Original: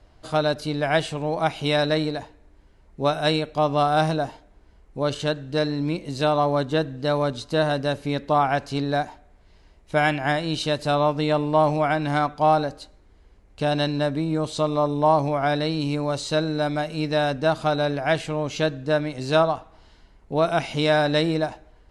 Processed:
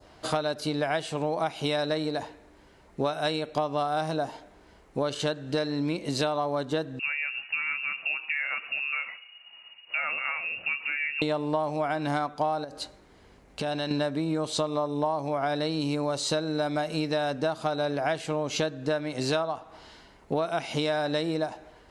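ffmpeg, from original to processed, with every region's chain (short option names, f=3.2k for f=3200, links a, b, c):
-filter_complex "[0:a]asettb=1/sr,asplit=3[a][b][c];[a]atrim=end=6.994[d];[b]atrim=start=6.99:end=11.22,asetpts=PTS-STARTPTS,afade=t=in:d=0.004:c=qsin,afade=t=out:st=4.226:d=0.004:c=qsin,acompressor=threshold=-30dB:ratio=3:attack=3.2:release=140:knee=1:detection=peak,flanger=delay=6.1:depth=3.5:regen=67:speed=1.9:shape=triangular,lowpass=f=2.5k:t=q:w=0.5098,lowpass=f=2.5k:t=q:w=0.6013,lowpass=f=2.5k:t=q:w=0.9,lowpass=f=2.5k:t=q:w=2.563,afreqshift=-2900[e];[c]atrim=start=11.216[f];[d][e]acrossfade=d=0.004:c1=hsin:c2=qsin[g];[g][f]acrossfade=d=0.004:c1=qsin:c2=hsin,asettb=1/sr,asplit=3[h][i][j];[h]atrim=end=12.644[k];[i]atrim=start=12.64:end=13.91,asetpts=PTS-STARTPTS,afade=t=in:d=0.004:c=qsin,afade=t=out:st=1.266:d=0.004:c=qsin,acompressor=threshold=-31dB:ratio=10:attack=3.2:release=140:knee=1:detection=peak,aeval=exprs='val(0)+0.00126*(sin(2*PI*50*n/s)+sin(2*PI*2*50*n/s)/2+sin(2*PI*3*50*n/s)/3+sin(2*PI*4*50*n/s)/4+sin(2*PI*5*50*n/s)/5)':c=same[l];[j]atrim=start=13.906[m];[k][l]acrossfade=d=0.004:c1=hsin:c2=qsin[n];[n][m]acrossfade=d=0.004:c1=qsin:c2=hsin,highpass=f=260:p=1,adynamicequalizer=threshold=0.0126:dfrequency=2300:dqfactor=0.84:tfrequency=2300:tqfactor=0.84:attack=5:release=100:ratio=0.375:range=2:mode=cutabove:tftype=bell,acompressor=threshold=-32dB:ratio=10,volume=7.5dB"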